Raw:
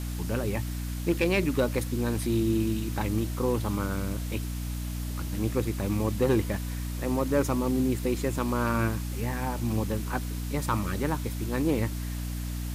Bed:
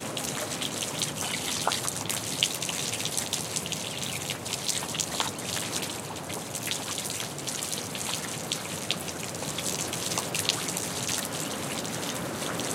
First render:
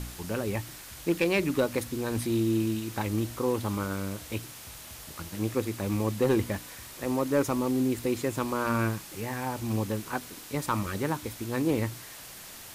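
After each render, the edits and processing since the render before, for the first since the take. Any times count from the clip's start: de-hum 60 Hz, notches 5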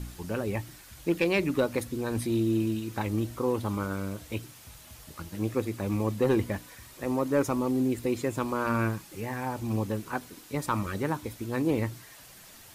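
noise reduction 7 dB, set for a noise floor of -45 dBFS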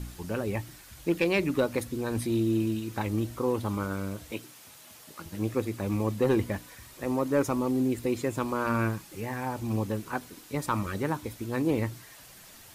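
4.31–5.26 s: high-pass 210 Hz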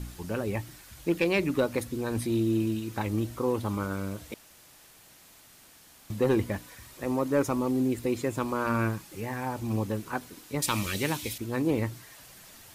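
4.34–6.10 s: room tone; 10.62–11.38 s: resonant high shelf 1.9 kHz +11 dB, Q 1.5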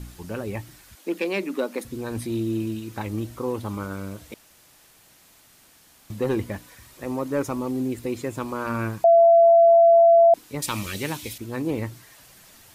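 0.95–1.85 s: elliptic high-pass 200 Hz; 9.04–10.34 s: bleep 674 Hz -10.5 dBFS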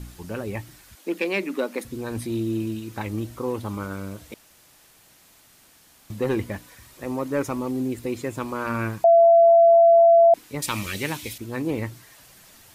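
dynamic bell 2.1 kHz, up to +4 dB, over -41 dBFS, Q 1.6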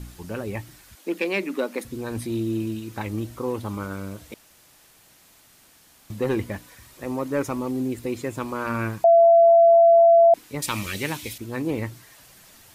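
no audible change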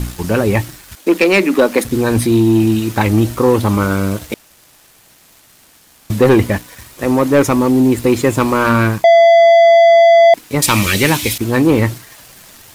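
waveshaping leveller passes 2; in parallel at +2 dB: gain riding within 4 dB 0.5 s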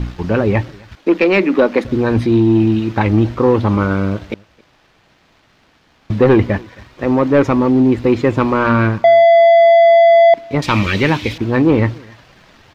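distance through air 230 m; echo from a far wall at 46 m, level -26 dB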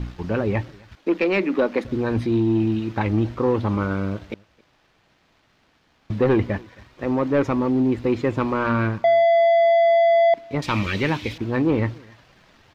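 trim -8 dB

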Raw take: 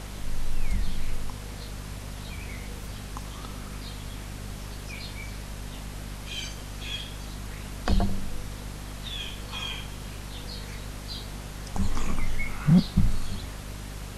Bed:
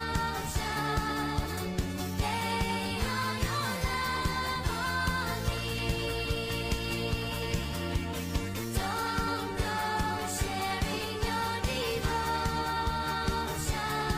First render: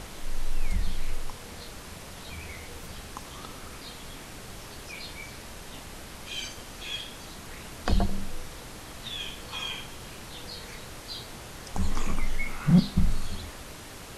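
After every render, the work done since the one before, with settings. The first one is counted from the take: hum notches 50/100/150/200/250 Hz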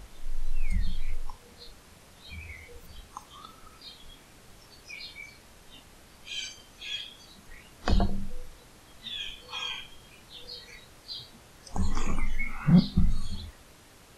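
noise print and reduce 11 dB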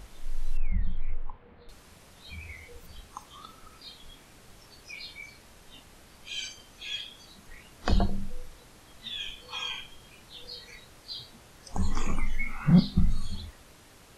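0.57–1.69 s: Gaussian low-pass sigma 3.6 samples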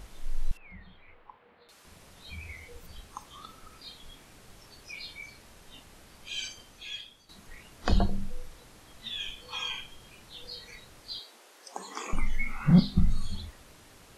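0.51–1.85 s: high-pass 660 Hz 6 dB/octave; 6.59–7.29 s: fade out, to -12 dB; 11.19–12.13 s: high-pass 340 Hz 24 dB/octave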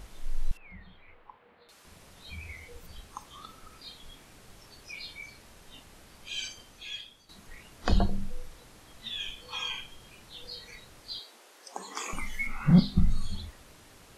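11.96–12.47 s: tilt EQ +2 dB/octave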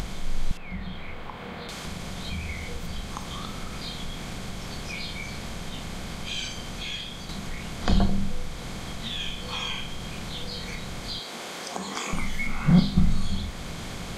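spectral levelling over time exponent 0.6; upward compressor, threshold -28 dBFS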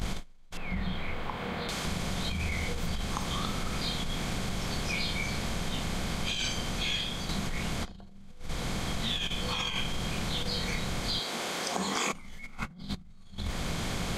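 peak limiter -17 dBFS, peak gain reduction 10.5 dB; compressor with a negative ratio -32 dBFS, ratio -0.5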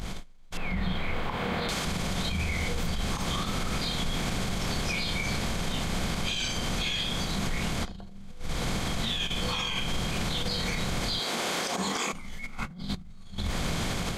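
peak limiter -26 dBFS, peak gain reduction 11 dB; level rider gain up to 5.5 dB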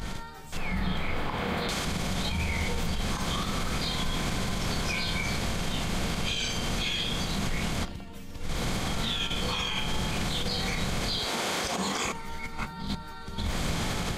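add bed -11.5 dB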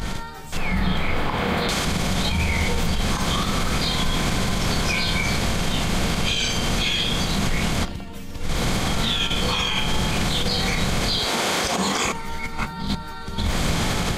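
trim +7.5 dB

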